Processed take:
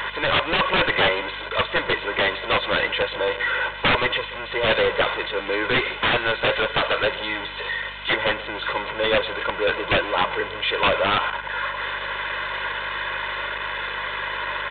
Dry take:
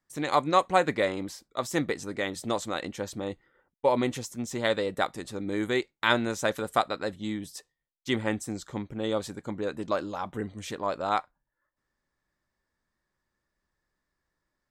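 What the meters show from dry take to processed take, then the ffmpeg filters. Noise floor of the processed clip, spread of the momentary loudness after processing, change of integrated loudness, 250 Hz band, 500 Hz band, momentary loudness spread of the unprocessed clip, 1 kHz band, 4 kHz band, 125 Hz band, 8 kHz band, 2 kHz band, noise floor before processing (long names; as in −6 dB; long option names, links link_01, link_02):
−33 dBFS, 7 LU, +7.0 dB, −1.0 dB, +6.0 dB, 11 LU, +6.5 dB, +14.0 dB, +3.5 dB, below −35 dB, +14.0 dB, −84 dBFS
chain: -filter_complex "[0:a]aeval=exprs='val(0)+0.5*0.0316*sgn(val(0))':channel_layout=same,highpass=frequency=1100:poles=1,aecho=1:1:2:0.89,asplit=2[link_01][link_02];[link_02]highpass=frequency=720:poles=1,volume=14dB,asoftclip=type=tanh:threshold=-4.5dB[link_03];[link_01][link_03]amix=inputs=2:normalize=0,lowpass=frequency=2500:poles=1,volume=-6dB,aeval=exprs='val(0)+0.00282*(sin(2*PI*50*n/s)+sin(2*PI*2*50*n/s)/2+sin(2*PI*3*50*n/s)/3+sin(2*PI*4*50*n/s)/4+sin(2*PI*5*50*n/s)/5)':channel_layout=same,aeval=exprs='(mod(6.68*val(0)+1,2)-1)/6.68':channel_layout=same,asplit=2[link_04][link_05];[link_05]adelay=130,highpass=300,lowpass=3400,asoftclip=type=hard:threshold=-25dB,volume=-13dB[link_06];[link_04][link_06]amix=inputs=2:normalize=0,aresample=8000,aresample=44100,volume=6dB"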